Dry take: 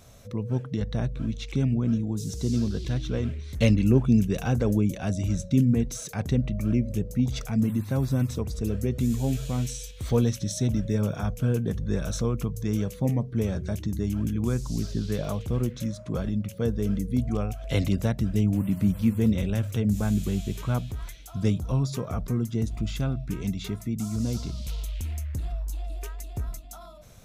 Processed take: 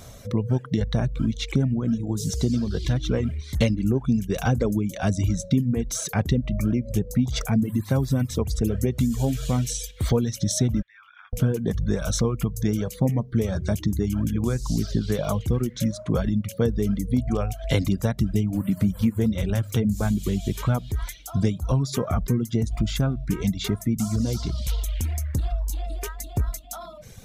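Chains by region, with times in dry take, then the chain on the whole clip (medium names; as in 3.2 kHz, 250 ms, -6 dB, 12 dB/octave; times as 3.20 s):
10.82–11.33 s: inverse Chebyshev high-pass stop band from 570 Hz, stop band 50 dB + compression 2:1, threshold -53 dBFS + distance through air 420 m
whole clip: compression 5:1, threshold -26 dBFS; band-stop 2.6 kHz, Q 14; reverb removal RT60 1 s; trim +9 dB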